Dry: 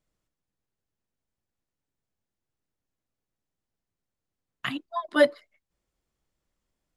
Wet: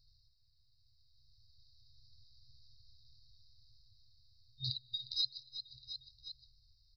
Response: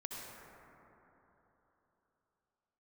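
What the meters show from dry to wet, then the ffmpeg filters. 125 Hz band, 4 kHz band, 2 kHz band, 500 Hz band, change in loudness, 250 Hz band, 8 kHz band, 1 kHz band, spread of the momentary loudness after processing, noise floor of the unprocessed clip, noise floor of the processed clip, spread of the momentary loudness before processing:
+3.0 dB, +2.0 dB, below −40 dB, below −40 dB, −14.0 dB, below −25 dB, can't be measured, below −40 dB, 15 LU, below −85 dBFS, −71 dBFS, 12 LU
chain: -filter_complex "[0:a]dynaudnorm=framelen=220:gausssize=13:maxgain=12dB,tiltshelf=frequency=970:gain=-7,asplit=2[link_01][link_02];[1:a]atrim=start_sample=2205[link_03];[link_02][link_03]afir=irnorm=-1:irlink=0,volume=-21dB[link_04];[link_01][link_04]amix=inputs=2:normalize=0,aresample=11025,aresample=44100,aecho=1:1:356|712|1068:0.0794|0.0397|0.0199,afftfilt=real='re*(1-between(b*sr/4096,130,3700))':imag='im*(1-between(b*sr/4096,130,3700))':win_size=4096:overlap=0.75,bass=frequency=250:gain=10,treble=frequency=4000:gain=9,acompressor=threshold=-55dB:ratio=2.5,volume=11dB"

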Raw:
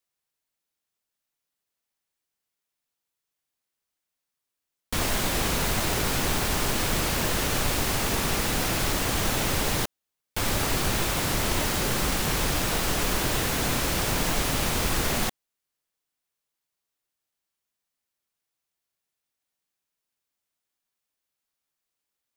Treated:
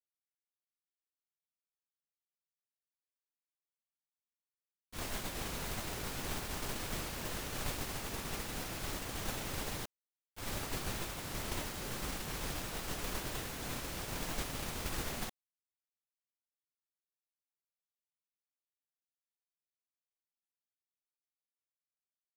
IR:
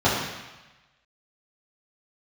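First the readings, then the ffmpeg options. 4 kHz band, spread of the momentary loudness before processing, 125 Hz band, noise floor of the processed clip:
−14.5 dB, 2 LU, −14.5 dB, below −85 dBFS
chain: -af "agate=range=-33dB:threshold=-13dB:ratio=3:detection=peak,volume=3dB"

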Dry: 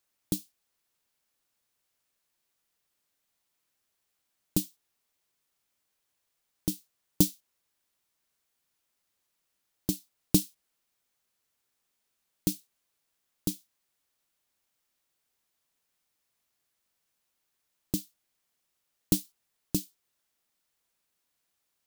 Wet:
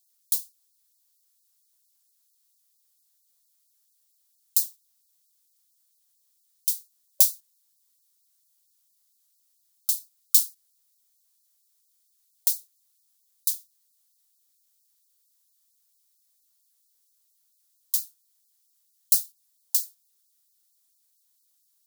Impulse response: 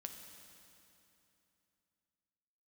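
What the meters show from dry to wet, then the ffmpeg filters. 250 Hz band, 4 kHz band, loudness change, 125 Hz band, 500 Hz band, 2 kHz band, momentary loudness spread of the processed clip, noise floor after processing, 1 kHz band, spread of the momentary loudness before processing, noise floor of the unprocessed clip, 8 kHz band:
below −40 dB, +5.0 dB, +7.5 dB, below −40 dB, below −25 dB, can't be measured, 14 LU, −69 dBFS, below −10 dB, 16 LU, −80 dBFS, +9.0 dB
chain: -af "aexciter=amount=4:drive=6.6:freq=3600,afftfilt=real='re*gte(b*sr/1024,570*pow(4000/570,0.5+0.5*sin(2*PI*4.4*pts/sr)))':imag='im*gte(b*sr/1024,570*pow(4000/570,0.5+0.5*sin(2*PI*4.4*pts/sr)))':win_size=1024:overlap=0.75,volume=-5.5dB"

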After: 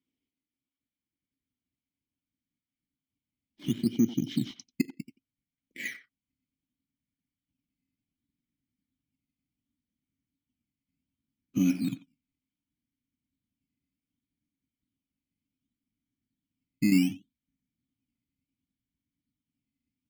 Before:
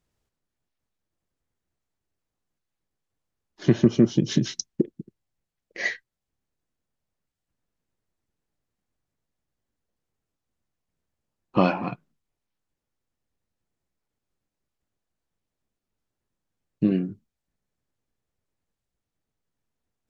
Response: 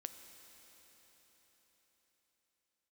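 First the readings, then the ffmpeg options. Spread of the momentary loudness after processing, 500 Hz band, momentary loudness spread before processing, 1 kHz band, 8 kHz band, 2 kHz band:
19 LU, −17.0 dB, 15 LU, below −25 dB, can't be measured, −7.5 dB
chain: -filter_complex "[0:a]asubboost=boost=10:cutoff=140,asplit=2[link_01][link_02];[link_02]acompressor=threshold=-25dB:ratio=6,volume=-3dB[link_03];[link_01][link_03]amix=inputs=2:normalize=0,alimiter=limit=-7dB:level=0:latency=1:release=38,asplit=3[link_04][link_05][link_06];[link_04]bandpass=frequency=270:width_type=q:width=8,volume=0dB[link_07];[link_05]bandpass=frequency=2290:width_type=q:width=8,volume=-6dB[link_08];[link_06]bandpass=frequency=3010:width_type=q:width=8,volume=-9dB[link_09];[link_07][link_08][link_09]amix=inputs=3:normalize=0,aeval=exprs='0.158*(cos(1*acos(clip(val(0)/0.158,-1,1)))-cos(1*PI/2))+0.001*(cos(5*acos(clip(val(0)/0.158,-1,1)))-cos(5*PI/2))+0.002*(cos(7*acos(clip(val(0)/0.158,-1,1)))-cos(7*PI/2))':channel_layout=same,acrossover=split=1800[link_10][link_11];[link_10]acrusher=samples=13:mix=1:aa=0.000001:lfo=1:lforange=13:lforate=0.67[link_12];[link_12][link_11]amix=inputs=2:normalize=0,asplit=2[link_13][link_14];[link_14]adelay=90,highpass=300,lowpass=3400,asoftclip=type=hard:threshold=-26dB,volume=-13dB[link_15];[link_13][link_15]amix=inputs=2:normalize=0,volume=2.5dB"

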